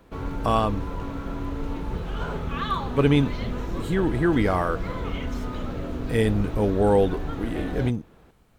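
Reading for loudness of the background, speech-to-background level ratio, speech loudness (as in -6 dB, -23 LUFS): -32.0 LUFS, 7.5 dB, -24.5 LUFS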